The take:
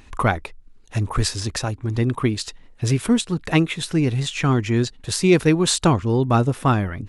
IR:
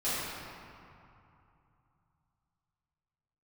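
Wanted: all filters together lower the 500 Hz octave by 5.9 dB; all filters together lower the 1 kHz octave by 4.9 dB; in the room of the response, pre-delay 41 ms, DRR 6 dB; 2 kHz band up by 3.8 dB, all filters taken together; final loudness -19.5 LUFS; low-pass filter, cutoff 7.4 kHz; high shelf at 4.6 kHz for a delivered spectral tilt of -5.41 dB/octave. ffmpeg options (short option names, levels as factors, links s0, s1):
-filter_complex "[0:a]lowpass=7400,equalizer=f=500:t=o:g=-8,equalizer=f=1000:t=o:g=-6.5,equalizer=f=2000:t=o:g=8.5,highshelf=f=4600:g=-7.5,asplit=2[s0][s1];[1:a]atrim=start_sample=2205,adelay=41[s2];[s1][s2]afir=irnorm=-1:irlink=0,volume=0.168[s3];[s0][s3]amix=inputs=2:normalize=0,volume=1.26"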